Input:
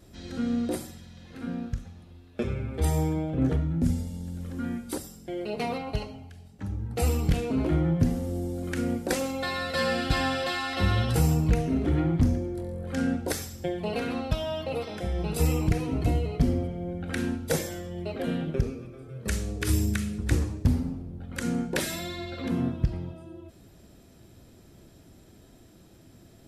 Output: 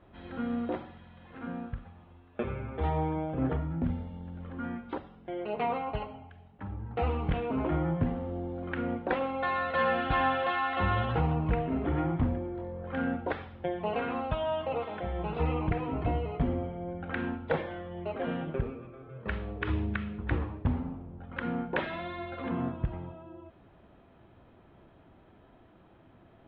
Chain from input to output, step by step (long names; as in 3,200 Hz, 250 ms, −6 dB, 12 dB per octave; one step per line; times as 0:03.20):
Butterworth low-pass 3,400 Hz 48 dB per octave
parametric band 980 Hz +12 dB 1.6 octaves
level −6.5 dB